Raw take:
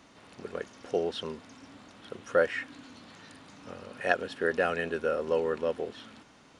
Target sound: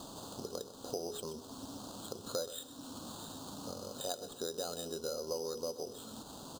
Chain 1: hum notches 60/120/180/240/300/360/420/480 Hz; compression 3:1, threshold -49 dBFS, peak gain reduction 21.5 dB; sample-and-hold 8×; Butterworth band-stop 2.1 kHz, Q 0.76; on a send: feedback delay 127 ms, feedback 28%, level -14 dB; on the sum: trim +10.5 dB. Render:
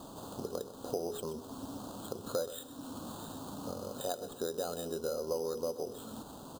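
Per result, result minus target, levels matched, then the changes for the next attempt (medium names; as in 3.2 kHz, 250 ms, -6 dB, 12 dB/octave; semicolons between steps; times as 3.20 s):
4 kHz band -6.0 dB; compression: peak gain reduction -4 dB
add after Butterworth band-stop: peaking EQ 5.1 kHz +8.5 dB 1.7 oct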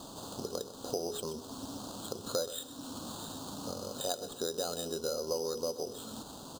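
compression: peak gain reduction -4 dB
change: compression 3:1, threshold -55 dBFS, peak gain reduction 25.5 dB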